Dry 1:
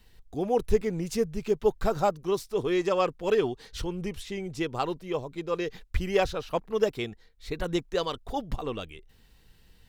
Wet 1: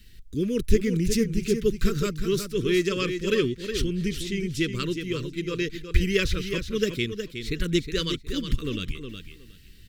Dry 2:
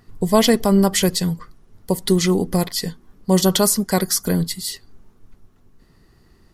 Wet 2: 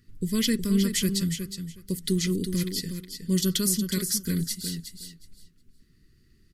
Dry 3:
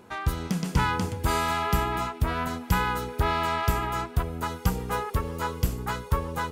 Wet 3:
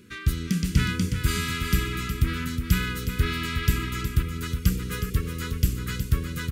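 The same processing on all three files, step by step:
Butterworth band-stop 770 Hz, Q 0.53; on a send: feedback echo 0.365 s, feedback 17%, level -8 dB; on the sum: match loudness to -27 LUFS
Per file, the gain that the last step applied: +7.5, -7.0, +3.0 dB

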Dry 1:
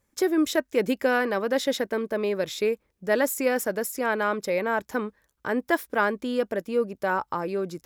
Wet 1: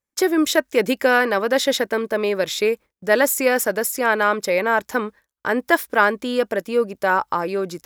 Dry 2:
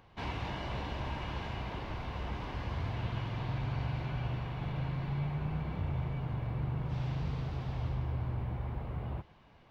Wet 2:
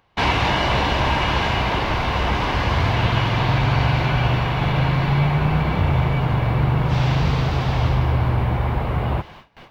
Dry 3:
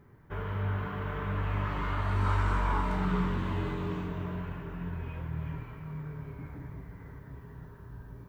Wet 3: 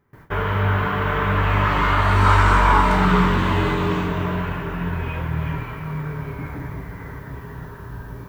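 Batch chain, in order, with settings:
gate with hold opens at -48 dBFS; low shelf 480 Hz -7 dB; match loudness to -20 LUFS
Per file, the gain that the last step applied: +9.0, +22.5, +17.5 dB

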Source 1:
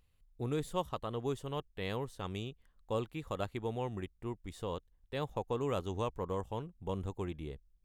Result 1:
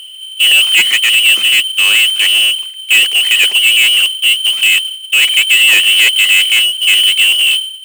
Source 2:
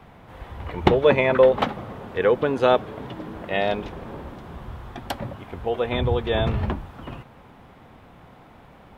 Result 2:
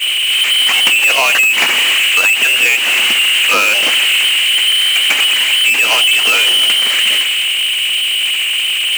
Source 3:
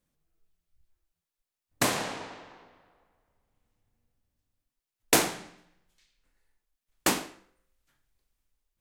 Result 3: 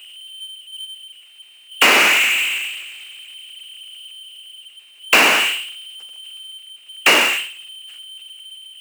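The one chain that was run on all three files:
expander -46 dBFS; air absorption 72 m; low-pass opened by the level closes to 480 Hz, open at -21 dBFS; inverted band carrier 3100 Hz; tilt shelf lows +3.5 dB, about 1100 Hz; power-law curve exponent 0.35; compressor, threshold -17 dBFS; HPF 230 Hz 24 dB/oct; normalise peaks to -1.5 dBFS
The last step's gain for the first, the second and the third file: +22.0, +7.0, +9.0 dB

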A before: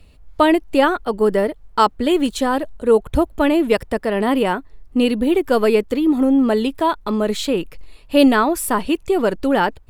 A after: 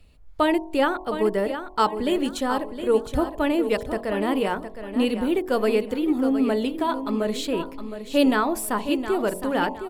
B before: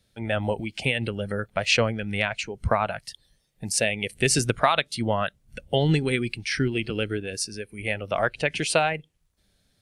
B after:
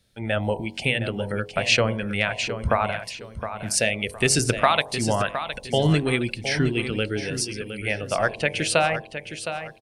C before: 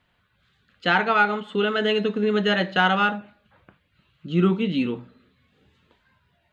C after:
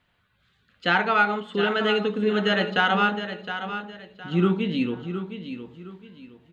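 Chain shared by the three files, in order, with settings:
de-hum 46.08 Hz, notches 24; on a send: feedback echo 0.714 s, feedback 30%, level -10 dB; on the sum: match loudness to -24 LUFS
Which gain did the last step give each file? -6.0, +2.0, -1.0 dB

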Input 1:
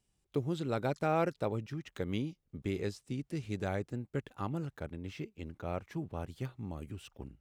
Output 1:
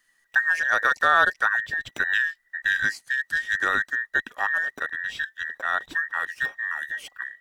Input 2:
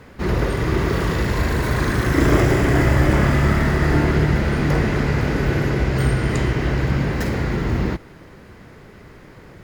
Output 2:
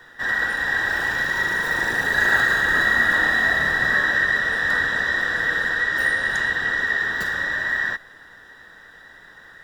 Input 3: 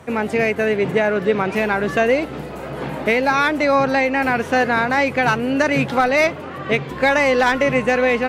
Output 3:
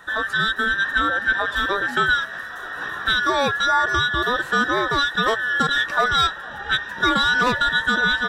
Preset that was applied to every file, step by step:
band inversion scrambler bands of 2000 Hz; normalise peaks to -6 dBFS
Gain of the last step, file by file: +11.5, -3.5, -3.0 dB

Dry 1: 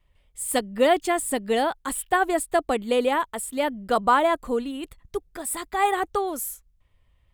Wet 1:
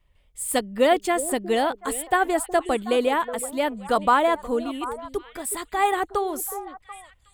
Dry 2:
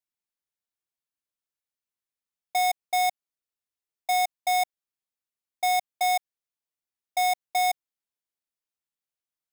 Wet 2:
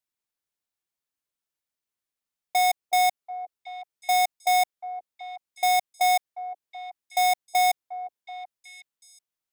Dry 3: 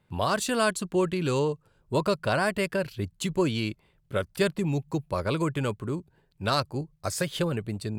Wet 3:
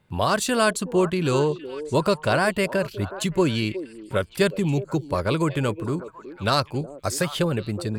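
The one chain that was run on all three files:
delay with a stepping band-pass 0.368 s, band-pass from 390 Hz, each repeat 1.4 oct, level -10 dB; match loudness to -24 LUFS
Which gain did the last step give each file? +0.5, +2.5, +4.5 dB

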